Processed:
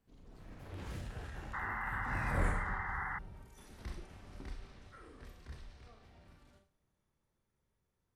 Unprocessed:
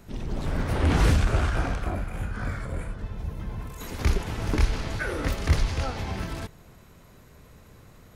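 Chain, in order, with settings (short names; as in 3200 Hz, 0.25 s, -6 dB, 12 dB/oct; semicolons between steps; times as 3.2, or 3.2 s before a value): Doppler pass-by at 2.43, 45 m/s, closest 5.4 m; Schroeder reverb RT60 0.38 s, combs from 29 ms, DRR 5 dB; painted sound noise, 1.53–3.19, 730–2100 Hz -39 dBFS; gain -1 dB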